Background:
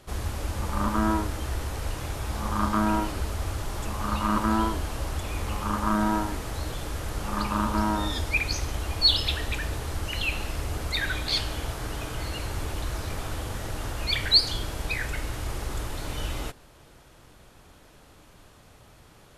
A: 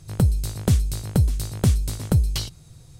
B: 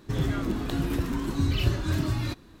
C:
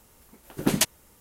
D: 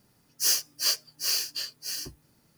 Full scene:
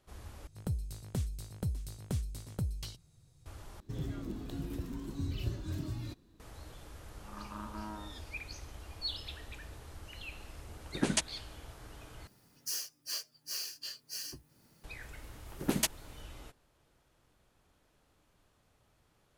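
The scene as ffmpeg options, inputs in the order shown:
ffmpeg -i bed.wav -i cue0.wav -i cue1.wav -i cue2.wav -i cue3.wav -filter_complex "[4:a]asplit=2[link_01][link_02];[3:a]asplit=2[link_03][link_04];[0:a]volume=-17.5dB[link_05];[2:a]equalizer=frequency=1500:width_type=o:width=2.4:gain=-7.5[link_06];[link_01]asplit=3[link_07][link_08][link_09];[link_07]bandpass=frequency=730:width_type=q:width=8,volume=0dB[link_10];[link_08]bandpass=frequency=1090:width_type=q:width=8,volume=-6dB[link_11];[link_09]bandpass=frequency=2440:width_type=q:width=8,volume=-9dB[link_12];[link_10][link_11][link_12]amix=inputs=3:normalize=0[link_13];[link_03]aresample=22050,aresample=44100[link_14];[link_02]acompressor=threshold=-40dB:ratio=3:attack=20:release=969:knee=1:detection=peak[link_15];[link_05]asplit=4[link_16][link_17][link_18][link_19];[link_16]atrim=end=0.474[link_20];[1:a]atrim=end=2.99,asetpts=PTS-STARTPTS,volume=-16.5dB[link_21];[link_17]atrim=start=3.456:end=3.804[link_22];[link_06]atrim=end=2.6,asetpts=PTS-STARTPTS,volume=-11dB[link_23];[link_18]atrim=start=6.396:end=12.274[link_24];[link_15]atrim=end=2.57[link_25];[link_19]atrim=start=14.836[link_26];[link_13]atrim=end=2.57,asetpts=PTS-STARTPTS,volume=-14.5dB,afade=type=in:duration=0.004:curve=hsin,afade=type=out:start_time=2.566:duration=0.004:curve=hsin,adelay=6940[link_27];[link_14]atrim=end=1.2,asetpts=PTS-STARTPTS,volume=-7.5dB,afade=type=in:duration=0.004:curve=hsin,afade=type=out:start_time=1.196:duration=0.004:curve=hsin,adelay=10360[link_28];[link_04]atrim=end=1.2,asetpts=PTS-STARTPTS,volume=-8dB,afade=type=in:duration=0.004:curve=hsin,afade=type=out:start_time=1.196:duration=0.004:curve=hsin,adelay=15020[link_29];[link_20][link_21]acrossfade=duration=0.004:curve1=hsin:curve2=hsin[link_30];[link_30][link_22]acrossfade=duration=0.004:curve1=hsin:curve2=hsin[link_31];[link_31][link_23]acrossfade=duration=0.004:curve1=hsin:curve2=hsin[link_32];[link_32][link_24]acrossfade=duration=0.004:curve1=hsin:curve2=hsin[link_33];[link_33][link_25]acrossfade=duration=0.004:curve1=hsin:curve2=hsin[link_34];[link_34][link_26]acrossfade=duration=0.004:curve1=hsin:curve2=hsin[link_35];[link_35][link_27][link_28][link_29]amix=inputs=4:normalize=0" out.wav

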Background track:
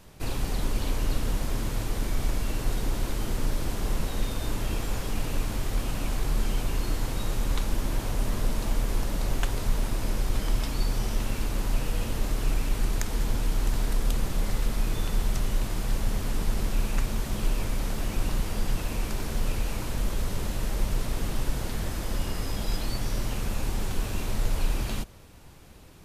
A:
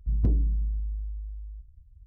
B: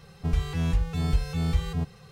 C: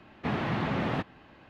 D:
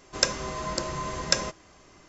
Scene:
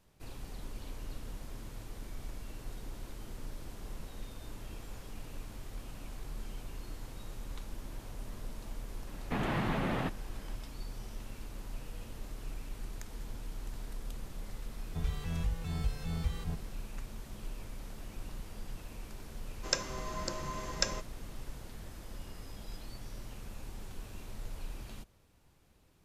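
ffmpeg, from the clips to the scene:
ffmpeg -i bed.wav -i cue0.wav -i cue1.wav -i cue2.wav -i cue3.wav -filter_complex "[0:a]volume=-16dB[link_01];[3:a]alimiter=limit=-23dB:level=0:latency=1:release=157[link_02];[2:a]equalizer=frequency=290:width_type=o:width=0.77:gain=-6.5[link_03];[link_02]atrim=end=1.49,asetpts=PTS-STARTPTS,volume=-1dB,afade=type=in:duration=0.004:curve=hsin,afade=type=out:start_time=1.486:duration=0.004:curve=hsin,adelay=9070[link_04];[link_03]atrim=end=2.11,asetpts=PTS-STARTPTS,volume=-9dB,afade=type=in:duration=0.004:curve=hsin,afade=type=out:start_time=2.106:duration=0.004:curve=hsin,adelay=14710[link_05];[4:a]atrim=end=2.08,asetpts=PTS-STARTPTS,volume=-8dB,afade=type=in:duration=0.004:curve=hsin,afade=type=out:start_time=2.076:duration=0.004:curve=hsin,adelay=19500[link_06];[link_01][link_04][link_05][link_06]amix=inputs=4:normalize=0" out.wav

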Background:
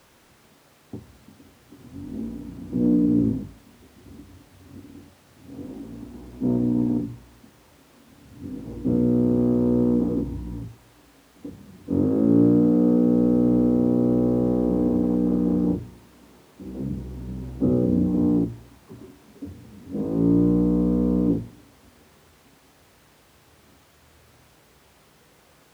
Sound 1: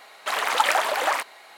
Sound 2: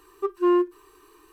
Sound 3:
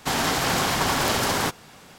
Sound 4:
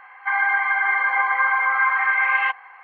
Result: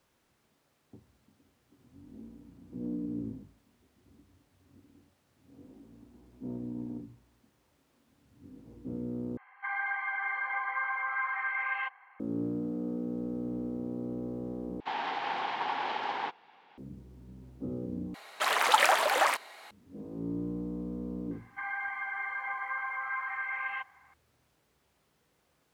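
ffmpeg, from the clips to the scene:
ffmpeg -i bed.wav -i cue0.wav -i cue1.wav -i cue2.wav -i cue3.wav -filter_complex "[4:a]asplit=2[link_01][link_02];[0:a]volume=-16.5dB[link_03];[3:a]highpass=430,equalizer=frequency=590:width_type=q:width=4:gain=-7,equalizer=frequency=850:width_type=q:width=4:gain=10,equalizer=frequency=1300:width_type=q:width=4:gain=-4,lowpass=frequency=3300:width=0.5412,lowpass=frequency=3300:width=1.3066[link_04];[link_03]asplit=4[link_05][link_06][link_07][link_08];[link_05]atrim=end=9.374[link_09];[link_01]atrim=end=2.83,asetpts=PTS-STARTPTS,volume=-13.5dB[link_10];[link_06]atrim=start=12.196:end=14.804[link_11];[link_04]atrim=end=1.98,asetpts=PTS-STARTPTS,volume=-10.5dB[link_12];[link_07]atrim=start=16.776:end=18.144[link_13];[1:a]atrim=end=1.57,asetpts=PTS-STARTPTS,volume=-2.5dB[link_14];[link_08]atrim=start=19.706[link_15];[link_02]atrim=end=2.83,asetpts=PTS-STARTPTS,volume=-16dB,afade=type=in:duration=0.004:curve=hsin,afade=type=out:start_time=2.826:duration=0.004:curve=hsin,adelay=21310[link_16];[link_09][link_10]acrossfade=duration=0.004:curve1=hsin:curve2=hsin[link_17];[link_17][link_11]acrossfade=duration=0.004:curve1=hsin:curve2=hsin[link_18];[link_18][link_12]acrossfade=duration=0.004:curve1=hsin:curve2=hsin[link_19];[link_19][link_13]acrossfade=duration=0.004:curve1=hsin:curve2=hsin[link_20];[link_20][link_14]acrossfade=duration=0.004:curve1=hsin:curve2=hsin[link_21];[link_21][link_15]acrossfade=duration=0.004:curve1=hsin:curve2=hsin[link_22];[link_22][link_16]amix=inputs=2:normalize=0" out.wav

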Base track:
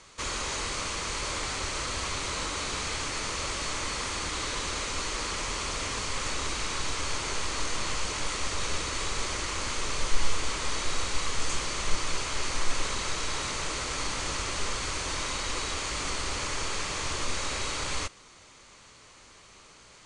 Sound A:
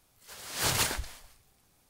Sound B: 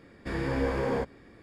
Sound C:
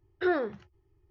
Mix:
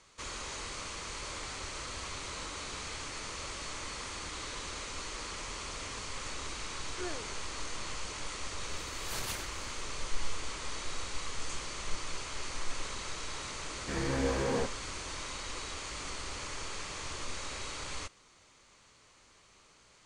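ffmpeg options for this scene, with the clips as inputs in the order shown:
ffmpeg -i bed.wav -i cue0.wav -i cue1.wav -i cue2.wav -filter_complex "[0:a]volume=-8.5dB[link_01];[3:a]atrim=end=1.1,asetpts=PTS-STARTPTS,volume=-14.5dB,afade=type=in:duration=0.004:curve=hsin,afade=type=out:start_time=1.096:duration=0.004:curve=hsin,adelay=6760[link_02];[1:a]atrim=end=1.89,asetpts=PTS-STARTPTS,volume=-12dB,afade=type=in:duration=0.004:curve=hsin,afade=type=out:start_time=1.886:duration=0.004:curve=hsin,adelay=8490[link_03];[2:a]atrim=end=1.42,asetpts=PTS-STARTPTS,volume=-3dB,afade=type=in:duration=0.004:curve=hsin,afade=type=out:start_time=1.416:duration=0.004:curve=hsin,adelay=13620[link_04];[link_01][link_02][link_03][link_04]amix=inputs=4:normalize=0" out.wav

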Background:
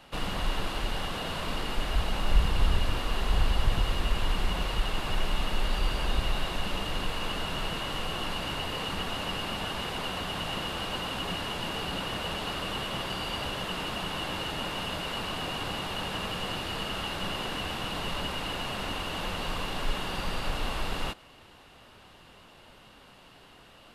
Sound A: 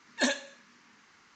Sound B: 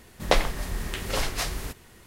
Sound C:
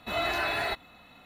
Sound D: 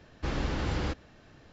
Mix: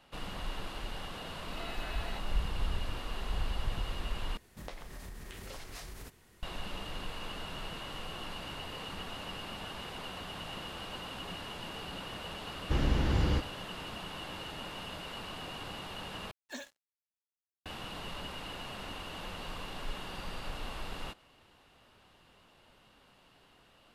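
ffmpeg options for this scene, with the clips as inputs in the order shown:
ffmpeg -i bed.wav -i cue0.wav -i cue1.wav -i cue2.wav -i cue3.wav -filter_complex "[0:a]volume=-9dB[link_01];[2:a]acompressor=threshold=-31dB:ratio=6:attack=3.2:release=140:knee=1:detection=peak[link_02];[4:a]lowshelf=frequency=320:gain=7[link_03];[1:a]acrusher=bits=5:mix=0:aa=0.5[link_04];[link_01]asplit=3[link_05][link_06][link_07];[link_05]atrim=end=4.374[link_08];[link_02]atrim=end=2.06,asetpts=PTS-STARTPTS,volume=-10dB[link_09];[link_06]atrim=start=6.426:end=16.314[link_10];[link_04]atrim=end=1.35,asetpts=PTS-STARTPTS,volume=-16.5dB[link_11];[link_07]atrim=start=17.656[link_12];[3:a]atrim=end=1.25,asetpts=PTS-STARTPTS,volume=-16dB,afade=type=in:duration=0.004:curve=hsin,afade=type=out:start_time=1.246:duration=0.004:curve=hsin,adelay=1440[link_13];[link_03]atrim=end=1.52,asetpts=PTS-STARTPTS,volume=-3dB,afade=type=in:duration=0.004:curve=hsin,afade=type=out:start_time=1.516:duration=0.004:curve=hsin,adelay=12470[link_14];[link_08][link_09]acrossfade=duration=0.004:curve1=hsin:curve2=hsin[link_15];[link_15][link_10]acrossfade=duration=0.004:curve1=hsin:curve2=hsin[link_16];[link_16][link_11]acrossfade=duration=0.004:curve1=hsin:curve2=hsin[link_17];[link_17][link_12]acrossfade=duration=0.004:curve1=hsin:curve2=hsin[link_18];[link_18][link_13][link_14]amix=inputs=3:normalize=0" out.wav

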